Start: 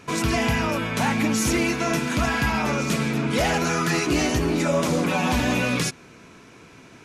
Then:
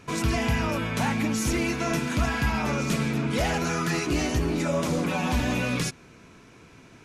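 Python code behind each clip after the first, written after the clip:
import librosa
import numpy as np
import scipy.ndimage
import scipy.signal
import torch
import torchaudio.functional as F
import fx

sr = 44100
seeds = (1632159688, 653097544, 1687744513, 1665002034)

y = fx.low_shelf(x, sr, hz=96.0, db=9.0)
y = fx.rider(y, sr, range_db=10, speed_s=0.5)
y = y * 10.0 ** (-4.5 / 20.0)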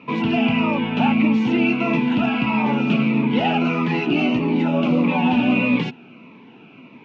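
y = fx.cabinet(x, sr, low_hz=150.0, low_slope=24, high_hz=3000.0, hz=(240.0, 860.0, 1700.0, 2700.0), db=(8, 8, -9, 10))
y = fx.notch_cascade(y, sr, direction='falling', hz=1.6)
y = y * 10.0 ** (5.5 / 20.0)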